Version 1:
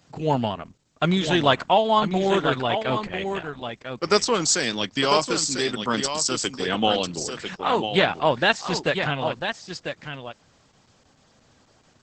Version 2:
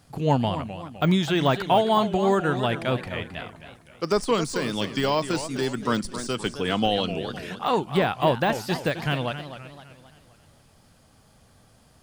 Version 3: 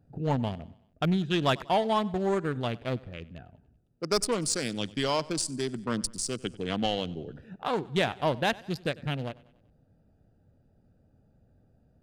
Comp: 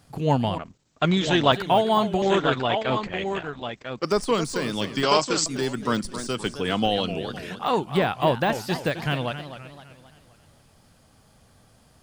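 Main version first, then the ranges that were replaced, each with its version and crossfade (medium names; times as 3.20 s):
2
0.58–1.52 s: from 1
2.22–4.05 s: from 1
5.03–5.46 s: from 1
not used: 3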